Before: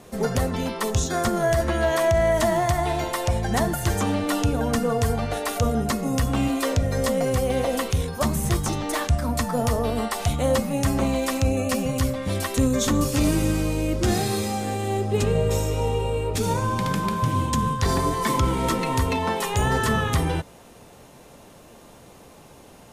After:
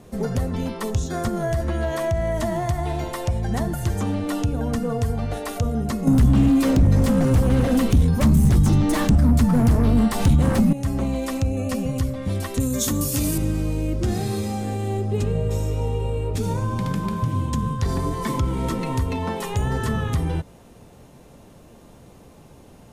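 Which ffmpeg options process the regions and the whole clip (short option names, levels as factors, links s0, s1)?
-filter_complex "[0:a]asettb=1/sr,asplit=3[s0][s1][s2];[s0]atrim=end=6.074[s3];[s1]atrim=start=6.07:end=10.73,asetpts=PTS-STARTPTS,afade=t=in:d=0.004:c=qsin,afade=t=out:st=4.656:d=0.004:c=qsin,aeval=exprs='0.299*sin(PI/2*2.82*val(0)/0.299)':c=same,lowshelf=f=320:t=q:w=1.5:g=6[s4];[s2]atrim=start=10.726[s5];[s3][s4]acrossfade=d=0.004:c1=hsin:c2=qsin[s6];[s6][s5]acrossfade=d=0.004:c1=qsin:c2=hsin,asettb=1/sr,asplit=3[s7][s8][s9];[s7]atrim=end=12.604[s10];[s8]atrim=start=12.6:end=13.38,asetpts=PTS-STARTPTS,afade=t=in:d=0.004:c=qsin,afade=t=out:st=0.776:d=0.004:c=qsin,highpass=54,aemphasis=mode=production:type=75fm[s11];[s9]atrim=start=13.376[s12];[s10][s11]acrossfade=d=0.004:c1=hsin:c2=qsin[s13];[s13][s12]acrossfade=d=0.004:c1=qsin:c2=hsin,lowshelf=f=360:g=10,acompressor=threshold=0.158:ratio=2,volume=0.562"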